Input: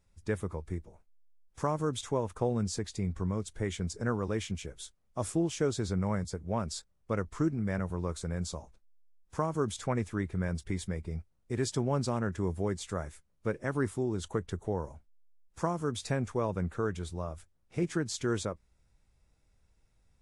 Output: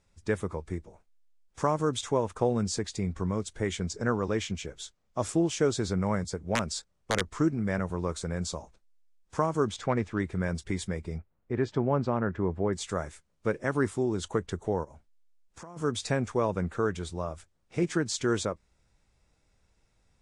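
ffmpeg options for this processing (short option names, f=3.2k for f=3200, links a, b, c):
-filter_complex "[0:a]asettb=1/sr,asplit=3[a][b][c];[a]atrim=end=3.864[d];[b]atrim=start=3.86:end=5.29,asetpts=PTS-STARTPTS,afade=t=in:d=0.004:c=qsin,afade=t=out:st=1.426:d=0.004:c=qsin,equalizer=f=9.1k:w=6.6:g=-12.5[e];[c]atrim=start=5.286[f];[d][e]acrossfade=d=0.004:c1=hsin:c2=qsin[g];[g][f]acrossfade=d=0.004:c1=qsin:c2=hsin,asettb=1/sr,asplit=3[h][i][j];[h]atrim=end=6.554[k];[i]atrim=start=6.55:end=7.36,asetpts=PTS-STARTPTS,afade=t=in:d=0.004:c=qsin,afade=t=out:st=0.806:d=0.004:c=qsin,aeval=exprs='(mod(11.2*val(0)+1,2)-1)/11.2':c=same[l];[j]atrim=start=7.356[m];[k][l]acrossfade=d=0.004:c1=hsin:c2=qsin[n];[n][m]acrossfade=d=0.004:c1=qsin:c2=hsin,asettb=1/sr,asplit=3[o][p][q];[o]atrim=end=9.684[r];[p]atrim=start=9.68:end=10.2,asetpts=PTS-STARTPTS,afade=t=in:d=0.004:c=qsin,afade=t=out:st=0.516:d=0.004:c=qsin,adynamicsmooth=sensitivity=7.5:basefreq=4.5k[s];[q]atrim=start=10.196[t];[r][s]acrossfade=d=0.004:c1=hsin:c2=qsin[u];[u][t]acrossfade=d=0.004:c1=qsin:c2=hsin,asettb=1/sr,asplit=3[v][w][x];[v]atrim=end=11.184[y];[w]atrim=start=11.18:end=12.73,asetpts=PTS-STARTPTS,afade=t=in:d=0.004:c=qsin,afade=t=out:st=1.546:d=0.004:c=qsin,lowpass=2k[z];[x]atrim=start=12.726[aa];[y][z]acrossfade=d=0.004:c1=hsin:c2=qsin[ab];[ab][aa]acrossfade=d=0.004:c1=qsin:c2=hsin,asplit=3[ac][ad][ae];[ac]afade=t=out:st=14.83:d=0.02[af];[ad]acompressor=threshold=-47dB:ratio=6:attack=3.2:release=140:knee=1:detection=peak,afade=t=in:st=14.83:d=0.02,afade=t=out:st=15.76:d=0.02[ag];[ae]afade=t=in:st=15.76:d=0.02[ah];[af][ag][ah]amix=inputs=3:normalize=0,lowpass=f=9.1k:w=0.5412,lowpass=f=9.1k:w=1.3066,lowshelf=f=140:g=-7,volume=5dB"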